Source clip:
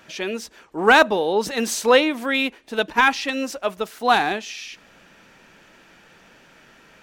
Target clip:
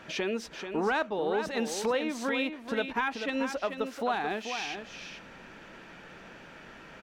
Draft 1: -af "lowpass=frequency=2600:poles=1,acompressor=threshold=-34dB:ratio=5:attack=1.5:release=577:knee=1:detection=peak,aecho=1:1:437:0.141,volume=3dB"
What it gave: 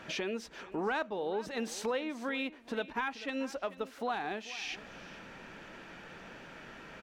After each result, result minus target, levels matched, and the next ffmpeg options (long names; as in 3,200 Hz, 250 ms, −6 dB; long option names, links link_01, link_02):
echo-to-direct −9 dB; downward compressor: peak gain reduction +5 dB
-af "lowpass=frequency=2600:poles=1,acompressor=threshold=-34dB:ratio=5:attack=1.5:release=577:knee=1:detection=peak,aecho=1:1:437:0.398,volume=3dB"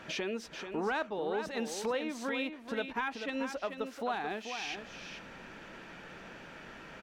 downward compressor: peak gain reduction +5 dB
-af "lowpass=frequency=2600:poles=1,acompressor=threshold=-28dB:ratio=5:attack=1.5:release=577:knee=1:detection=peak,aecho=1:1:437:0.398,volume=3dB"